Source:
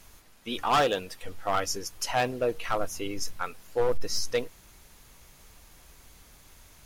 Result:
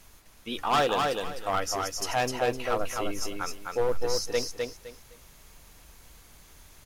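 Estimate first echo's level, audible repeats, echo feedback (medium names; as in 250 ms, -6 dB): -3.5 dB, 3, 24%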